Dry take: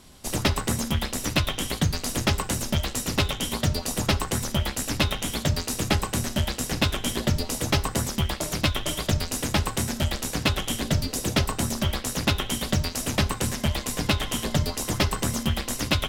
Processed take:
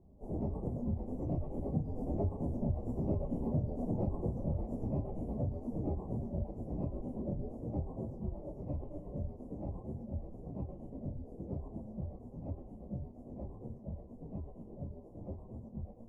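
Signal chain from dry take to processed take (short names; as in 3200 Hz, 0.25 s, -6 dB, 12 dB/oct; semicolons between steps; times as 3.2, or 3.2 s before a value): phase scrambler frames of 0.1 s; Doppler pass-by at 3.27, 12 m/s, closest 17 m; inverse Chebyshev low-pass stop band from 1400 Hz, stop band 40 dB; compressor 2.5:1, threshold -33 dBFS, peak gain reduction 9.5 dB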